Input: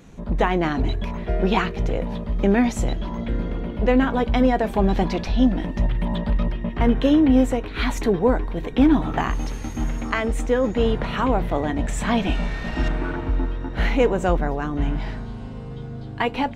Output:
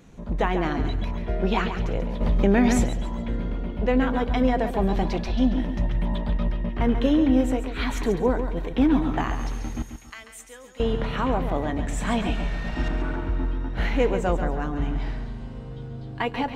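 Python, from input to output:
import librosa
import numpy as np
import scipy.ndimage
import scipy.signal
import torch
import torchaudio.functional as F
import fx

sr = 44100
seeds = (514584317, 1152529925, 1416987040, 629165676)

p1 = fx.pre_emphasis(x, sr, coefficient=0.97, at=(9.82, 10.8))
p2 = p1 + fx.echo_feedback(p1, sr, ms=138, feedback_pct=35, wet_db=-9, dry=0)
p3 = fx.env_flatten(p2, sr, amount_pct=70, at=(2.2, 2.83), fade=0.02)
y = F.gain(torch.from_numpy(p3), -4.0).numpy()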